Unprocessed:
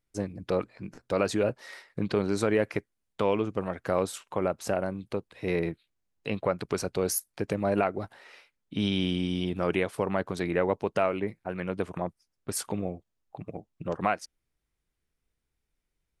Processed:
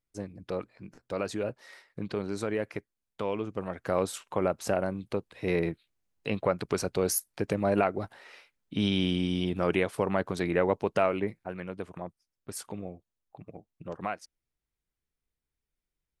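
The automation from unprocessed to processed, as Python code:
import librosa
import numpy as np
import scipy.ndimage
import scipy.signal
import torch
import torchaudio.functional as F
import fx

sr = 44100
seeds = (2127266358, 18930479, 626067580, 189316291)

y = fx.gain(x, sr, db=fx.line((3.29, -6.0), (4.15, 0.5), (11.24, 0.5), (11.75, -7.0)))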